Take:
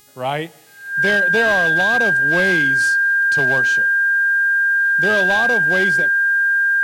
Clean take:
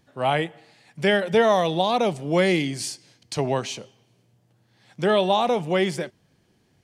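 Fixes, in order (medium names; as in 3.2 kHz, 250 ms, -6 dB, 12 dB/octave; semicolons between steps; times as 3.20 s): clip repair -11 dBFS; de-hum 415.5 Hz, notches 39; band-stop 1.6 kHz, Q 30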